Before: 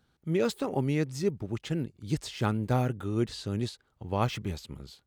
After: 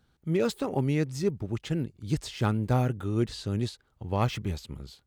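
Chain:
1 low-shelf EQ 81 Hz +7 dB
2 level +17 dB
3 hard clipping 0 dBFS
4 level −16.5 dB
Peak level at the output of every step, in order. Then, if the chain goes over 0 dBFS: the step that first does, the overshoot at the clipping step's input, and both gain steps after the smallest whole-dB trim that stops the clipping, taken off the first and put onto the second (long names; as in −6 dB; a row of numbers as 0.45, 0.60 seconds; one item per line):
−13.5, +3.5, 0.0, −16.5 dBFS
step 2, 3.5 dB
step 2 +13 dB, step 4 −12.5 dB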